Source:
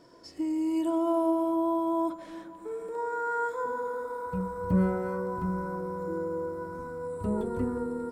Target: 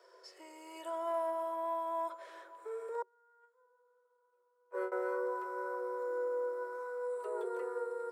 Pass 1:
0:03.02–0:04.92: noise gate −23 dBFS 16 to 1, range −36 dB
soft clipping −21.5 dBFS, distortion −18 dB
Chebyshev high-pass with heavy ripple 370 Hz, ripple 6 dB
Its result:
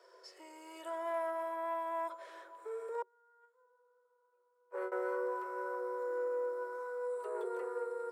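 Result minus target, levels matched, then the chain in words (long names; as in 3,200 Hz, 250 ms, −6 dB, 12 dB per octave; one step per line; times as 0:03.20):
soft clipping: distortion +11 dB
0:03.02–0:04.92: noise gate −23 dBFS 16 to 1, range −36 dB
soft clipping −14.5 dBFS, distortion −29 dB
Chebyshev high-pass with heavy ripple 370 Hz, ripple 6 dB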